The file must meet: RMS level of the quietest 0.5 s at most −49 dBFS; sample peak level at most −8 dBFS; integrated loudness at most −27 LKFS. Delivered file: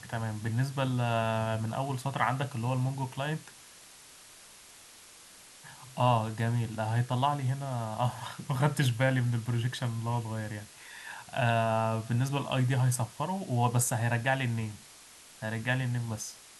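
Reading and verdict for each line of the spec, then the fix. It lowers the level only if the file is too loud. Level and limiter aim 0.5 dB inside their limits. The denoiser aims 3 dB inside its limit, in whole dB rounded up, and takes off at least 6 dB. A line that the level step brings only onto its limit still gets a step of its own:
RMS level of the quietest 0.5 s −53 dBFS: in spec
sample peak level −11.5 dBFS: in spec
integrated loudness −31.0 LKFS: in spec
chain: no processing needed

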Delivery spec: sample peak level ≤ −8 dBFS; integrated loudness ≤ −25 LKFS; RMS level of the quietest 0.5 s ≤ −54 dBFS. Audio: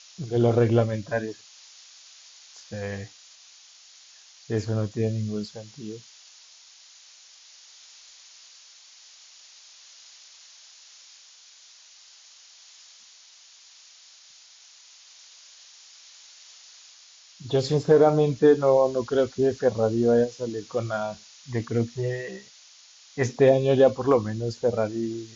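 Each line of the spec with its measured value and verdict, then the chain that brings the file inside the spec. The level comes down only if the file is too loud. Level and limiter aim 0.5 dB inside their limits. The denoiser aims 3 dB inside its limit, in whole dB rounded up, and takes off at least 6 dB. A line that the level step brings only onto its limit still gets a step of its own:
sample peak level −7.5 dBFS: out of spec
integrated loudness −24.0 LKFS: out of spec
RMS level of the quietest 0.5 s −52 dBFS: out of spec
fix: broadband denoise 6 dB, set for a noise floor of −52 dBFS
level −1.5 dB

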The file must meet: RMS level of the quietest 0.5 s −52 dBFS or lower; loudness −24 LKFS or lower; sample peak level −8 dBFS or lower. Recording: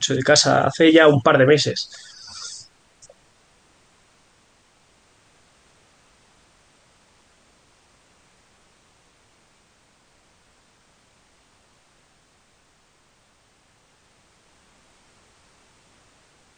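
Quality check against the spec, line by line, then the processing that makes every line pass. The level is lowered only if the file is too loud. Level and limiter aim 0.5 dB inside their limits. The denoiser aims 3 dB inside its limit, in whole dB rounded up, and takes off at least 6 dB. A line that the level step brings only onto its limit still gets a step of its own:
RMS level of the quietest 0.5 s −60 dBFS: in spec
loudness −16.0 LKFS: out of spec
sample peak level −2.5 dBFS: out of spec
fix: level −8.5 dB

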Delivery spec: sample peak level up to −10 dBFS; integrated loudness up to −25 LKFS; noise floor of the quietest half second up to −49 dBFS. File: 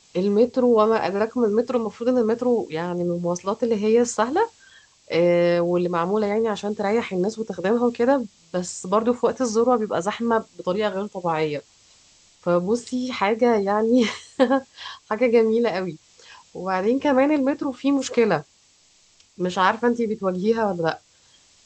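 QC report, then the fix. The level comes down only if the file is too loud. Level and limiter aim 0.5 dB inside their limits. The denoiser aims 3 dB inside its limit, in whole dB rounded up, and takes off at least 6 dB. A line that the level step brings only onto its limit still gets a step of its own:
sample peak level −5.0 dBFS: out of spec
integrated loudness −22.0 LKFS: out of spec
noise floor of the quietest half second −58 dBFS: in spec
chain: level −3.5 dB
brickwall limiter −10.5 dBFS

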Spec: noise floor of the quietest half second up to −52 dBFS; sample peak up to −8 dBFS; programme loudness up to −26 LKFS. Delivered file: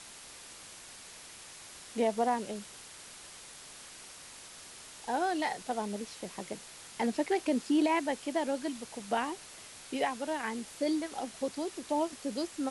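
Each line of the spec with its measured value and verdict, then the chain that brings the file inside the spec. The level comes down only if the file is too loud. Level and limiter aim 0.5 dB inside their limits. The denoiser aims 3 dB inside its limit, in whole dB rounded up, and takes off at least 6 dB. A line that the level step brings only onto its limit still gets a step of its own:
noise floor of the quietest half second −50 dBFS: out of spec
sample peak −18.0 dBFS: in spec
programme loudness −33.5 LKFS: in spec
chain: broadband denoise 6 dB, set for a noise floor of −50 dBFS

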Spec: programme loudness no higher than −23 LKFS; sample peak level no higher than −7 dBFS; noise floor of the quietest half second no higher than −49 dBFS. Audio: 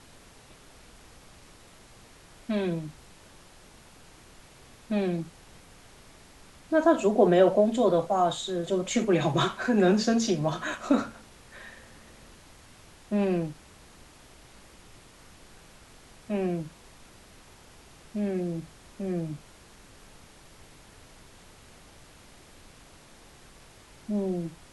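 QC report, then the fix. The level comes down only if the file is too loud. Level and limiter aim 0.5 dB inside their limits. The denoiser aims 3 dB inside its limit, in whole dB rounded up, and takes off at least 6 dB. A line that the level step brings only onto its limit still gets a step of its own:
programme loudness −27.0 LKFS: in spec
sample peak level −8.5 dBFS: in spec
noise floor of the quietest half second −53 dBFS: in spec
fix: no processing needed

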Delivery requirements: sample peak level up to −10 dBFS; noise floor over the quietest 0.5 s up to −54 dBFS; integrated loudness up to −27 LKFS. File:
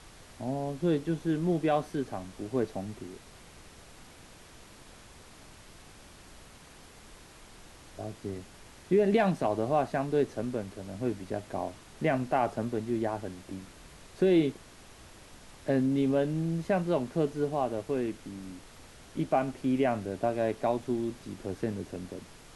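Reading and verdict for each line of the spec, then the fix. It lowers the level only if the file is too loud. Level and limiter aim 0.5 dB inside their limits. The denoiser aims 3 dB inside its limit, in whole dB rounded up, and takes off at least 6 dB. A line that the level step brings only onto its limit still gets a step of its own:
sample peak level −14.5 dBFS: in spec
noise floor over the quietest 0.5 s −52 dBFS: out of spec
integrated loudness −30.5 LKFS: in spec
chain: broadband denoise 6 dB, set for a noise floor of −52 dBFS

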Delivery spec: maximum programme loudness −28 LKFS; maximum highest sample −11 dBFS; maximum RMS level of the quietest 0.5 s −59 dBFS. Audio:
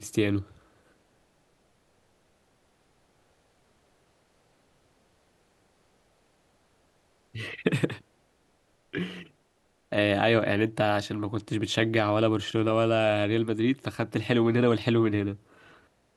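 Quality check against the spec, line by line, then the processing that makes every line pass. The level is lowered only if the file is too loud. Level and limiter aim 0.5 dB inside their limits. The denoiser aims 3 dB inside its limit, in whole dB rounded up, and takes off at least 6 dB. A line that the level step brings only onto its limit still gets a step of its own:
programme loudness −26.5 LKFS: out of spec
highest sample −8.5 dBFS: out of spec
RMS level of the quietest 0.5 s −68 dBFS: in spec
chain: level −2 dB
brickwall limiter −11.5 dBFS

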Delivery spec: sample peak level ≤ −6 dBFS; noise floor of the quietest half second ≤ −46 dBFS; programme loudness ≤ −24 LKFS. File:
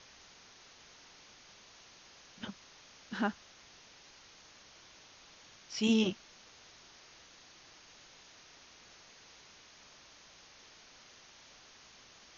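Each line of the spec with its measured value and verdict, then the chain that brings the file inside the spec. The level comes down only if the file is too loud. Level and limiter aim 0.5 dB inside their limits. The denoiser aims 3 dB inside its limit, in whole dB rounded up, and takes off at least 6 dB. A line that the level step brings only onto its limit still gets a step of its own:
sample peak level −18.0 dBFS: in spec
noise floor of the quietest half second −58 dBFS: in spec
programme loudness −34.5 LKFS: in spec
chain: no processing needed

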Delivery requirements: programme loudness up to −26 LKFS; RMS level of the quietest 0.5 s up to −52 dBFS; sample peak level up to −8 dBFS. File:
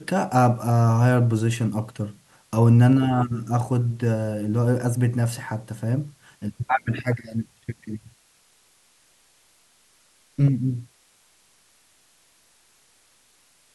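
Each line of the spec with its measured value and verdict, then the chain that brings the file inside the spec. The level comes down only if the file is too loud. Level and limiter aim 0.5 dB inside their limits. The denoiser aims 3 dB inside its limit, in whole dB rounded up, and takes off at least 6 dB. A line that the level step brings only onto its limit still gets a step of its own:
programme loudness −22.5 LKFS: out of spec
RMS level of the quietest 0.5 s −60 dBFS: in spec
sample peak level −5.5 dBFS: out of spec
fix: level −4 dB

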